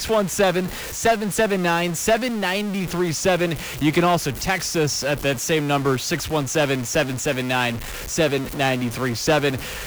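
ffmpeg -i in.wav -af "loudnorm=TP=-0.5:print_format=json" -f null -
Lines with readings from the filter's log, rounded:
"input_i" : "-21.6",
"input_tp" : "-8.8",
"input_lra" : "1.3",
"input_thresh" : "-31.6",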